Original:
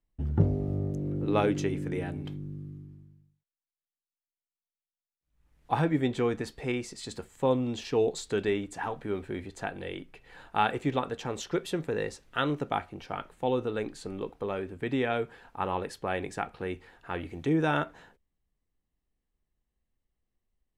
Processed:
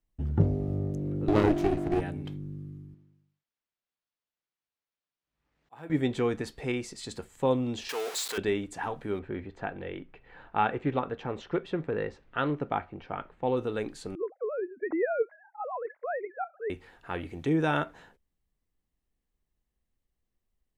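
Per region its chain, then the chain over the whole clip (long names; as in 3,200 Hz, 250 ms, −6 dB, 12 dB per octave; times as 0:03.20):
0:01.28–0:02.01: parametric band 350 Hz +13.5 dB 0.29 octaves + mains-hum notches 50/100/150/200/250 Hz + windowed peak hold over 33 samples
0:02.94–0:05.90: high-pass filter 310 Hz 6 dB per octave + volume swells 742 ms + linearly interpolated sample-rate reduction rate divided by 4×
0:07.89–0:08.38: converter with a step at zero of −30 dBFS + high-pass filter 780 Hz
0:09.19–0:13.57: low-pass filter 2,400 Hz + highs frequency-modulated by the lows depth 0.14 ms
0:14.15–0:16.70: three sine waves on the formant tracks + Chebyshev low-pass filter 2,100 Hz, order 6 + notch filter 1,200 Hz
whole clip: no processing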